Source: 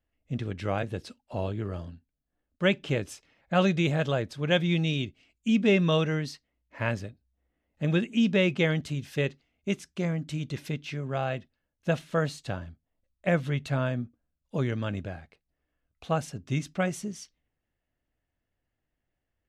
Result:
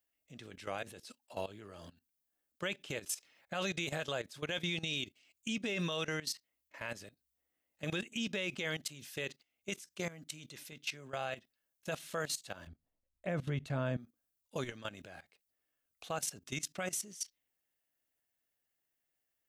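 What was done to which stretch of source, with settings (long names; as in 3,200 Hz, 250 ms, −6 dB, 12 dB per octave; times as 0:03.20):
0:12.67–0:13.97: spectral tilt −3.5 dB per octave
whole clip: RIAA equalisation recording; output level in coarse steps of 17 dB; brickwall limiter −25.5 dBFS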